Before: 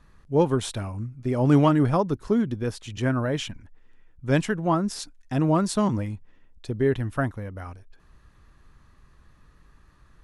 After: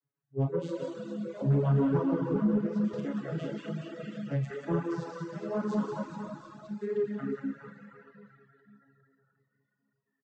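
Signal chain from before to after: vocoder on a broken chord minor triad, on C#3, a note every 467 ms; wow and flutter 33 cents; on a send: reverse bouncing-ball echo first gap 180 ms, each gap 1.3×, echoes 5; on the sum: Schroeder reverb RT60 3.4 s, combs from 26 ms, DRR -3.5 dB; spectral noise reduction 18 dB; flange 1 Hz, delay 1.7 ms, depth 7 ms, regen -45%; reverb removal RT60 0.88 s; saturation -14.5 dBFS, distortion -22 dB; 2.93–4.51 s: three bands compressed up and down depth 70%; trim -2.5 dB

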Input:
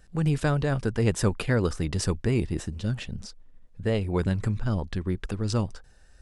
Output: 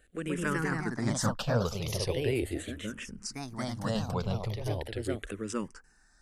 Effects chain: 0.44–1.06 s: expander -23 dBFS; bass shelf 200 Hz -9.5 dB; ever faster or slower copies 147 ms, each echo +2 st, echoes 2; 3.24–4.10 s: treble shelf 3.6 kHz -> 5.7 kHz +11 dB; barber-pole phaser -0.39 Hz

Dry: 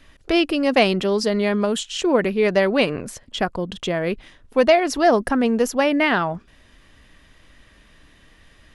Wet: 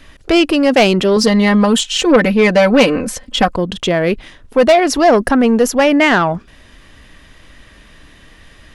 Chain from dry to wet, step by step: 1.16–3.56 s: comb 3.9 ms, depth 85%; saturation -12.5 dBFS, distortion -13 dB; trim +9 dB

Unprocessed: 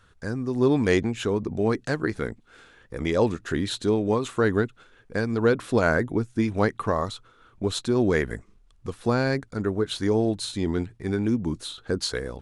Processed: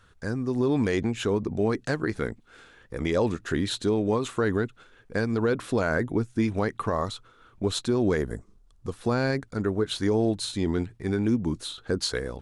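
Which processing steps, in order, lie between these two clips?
8.16–8.95 s: peaking EQ 2.3 kHz -14.5 dB -> -5 dB 1.2 oct; peak limiter -15 dBFS, peak gain reduction 7 dB

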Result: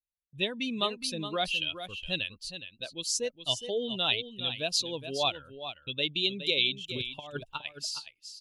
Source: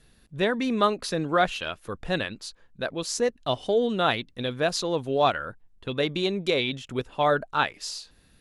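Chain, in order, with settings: expander on every frequency bin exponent 1.5; gate -53 dBFS, range -26 dB; resonant high shelf 2.2 kHz +8.5 dB, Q 3; 6.84–7.66 s: compressor with a negative ratio -30 dBFS, ratio -0.5; delay 416 ms -10.5 dB; trim -7 dB

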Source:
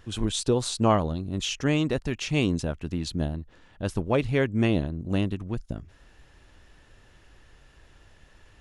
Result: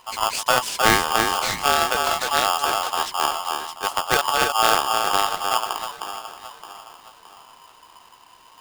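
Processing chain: band-stop 410 Hz, Q 12; echo whose repeats swap between lows and highs 309 ms, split 930 Hz, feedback 63%, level -3.5 dB; Chebyshev shaper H 4 -17 dB, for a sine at -7 dBFS; polarity switched at an audio rate 1 kHz; trim +2.5 dB

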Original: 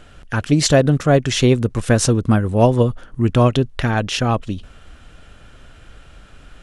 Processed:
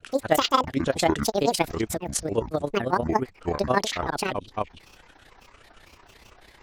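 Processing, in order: granulator, grains 18 per s, spray 438 ms, pitch spread up and down by 12 st; in parallel at -2 dB: compression, threshold -27 dBFS, peak gain reduction 17.5 dB; on the sum: tone controls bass -12 dB, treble 0 dB; AM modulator 31 Hz, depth 45%; trim -3.5 dB

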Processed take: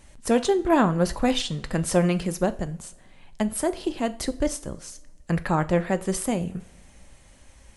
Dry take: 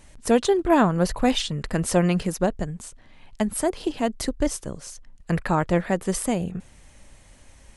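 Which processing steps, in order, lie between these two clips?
two-slope reverb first 0.38 s, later 2.1 s, from -21 dB, DRR 11 dB; trim -1.5 dB

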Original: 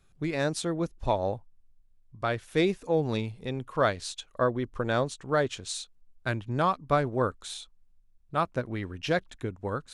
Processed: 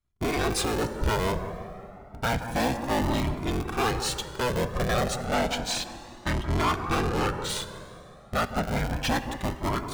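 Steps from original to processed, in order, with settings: cycle switcher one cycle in 3, inverted; 5.24–7.49 s: low-pass 6.4 kHz 12 dB/octave; waveshaping leveller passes 5; feedback echo behind a low-pass 175 ms, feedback 52%, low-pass 1.5 kHz, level -9 dB; plate-style reverb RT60 3.6 s, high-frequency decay 0.5×, DRR 11.5 dB; Shepard-style flanger rising 0.31 Hz; trim -5.5 dB

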